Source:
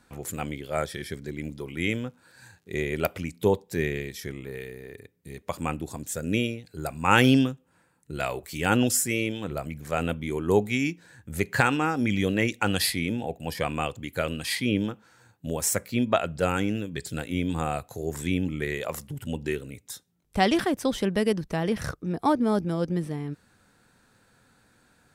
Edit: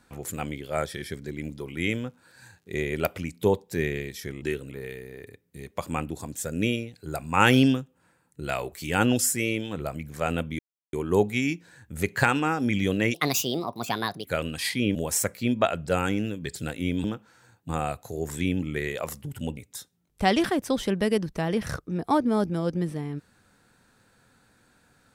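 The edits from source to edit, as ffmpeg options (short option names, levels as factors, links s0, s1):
-filter_complex "[0:a]asplit=10[s0][s1][s2][s3][s4][s5][s6][s7][s8][s9];[s0]atrim=end=4.422[s10];[s1]atrim=start=19.428:end=19.722[s11];[s2]atrim=start=4.418:end=10.3,asetpts=PTS-STARTPTS,afade=t=out:st=5.878:d=0.004:c=hsin,apad=pad_dur=0.34[s12];[s3]atrim=start=10.3:end=12.514,asetpts=PTS-STARTPTS,afade=t=in:d=0.004:c=hsin[s13];[s4]atrim=start=12.51:end=14.11,asetpts=PTS-STARTPTS,asetrate=63504,aresample=44100[s14];[s5]atrim=start=14.106:end=14.812[s15];[s6]atrim=start=15.458:end=17.552[s16];[s7]atrim=start=14.808:end=15.462[s17];[s8]atrim=start=17.548:end=19.432[s18];[s9]atrim=start=19.718[s19];[s10][s11]acrossfade=d=0.004:c1=hsin:c2=hsin[s20];[s12][s13]concat=n=2:v=0:a=1[s21];[s20][s21]acrossfade=d=0.004:c1=hsin:c2=hsin[s22];[s22][s14]acrossfade=d=0.004:c1=hsin:c2=hsin[s23];[s23][s15]acrossfade=d=0.004:c1=hsin:c2=hsin[s24];[s24][s16]acrossfade=d=0.004:c1=hsin:c2=hsin[s25];[s25][s17]acrossfade=d=0.004:c1=hsin:c2=hsin[s26];[s26][s18]acrossfade=d=0.004:c1=hsin:c2=hsin[s27];[s27][s19]acrossfade=d=0.004:c1=hsin:c2=hsin"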